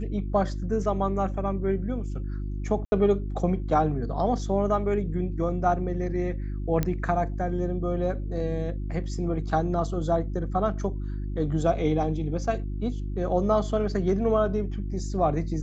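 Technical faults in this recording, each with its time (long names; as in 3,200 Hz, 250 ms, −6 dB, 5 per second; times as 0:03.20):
mains hum 50 Hz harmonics 7 −31 dBFS
0:02.85–0:02.92: drop-out 70 ms
0:06.83: click −12 dBFS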